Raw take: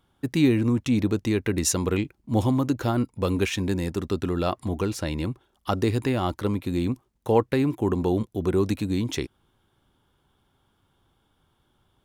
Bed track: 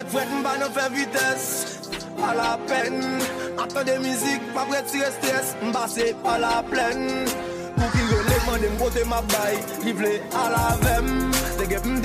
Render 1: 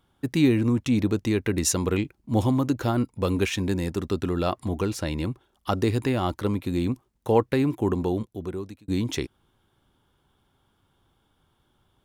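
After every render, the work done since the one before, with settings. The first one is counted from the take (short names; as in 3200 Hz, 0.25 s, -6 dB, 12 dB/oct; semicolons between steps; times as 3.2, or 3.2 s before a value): 7.87–8.88 fade out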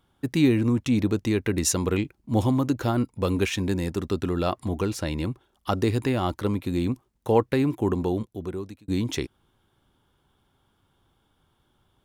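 nothing audible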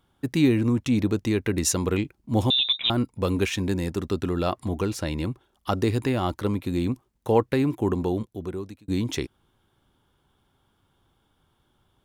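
2.5–2.9 inverted band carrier 3800 Hz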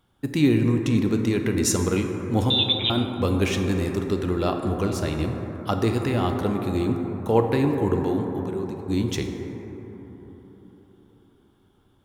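plate-style reverb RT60 4.5 s, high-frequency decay 0.25×, pre-delay 0 ms, DRR 3.5 dB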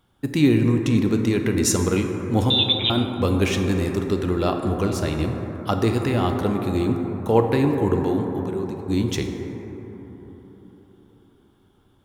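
gain +2 dB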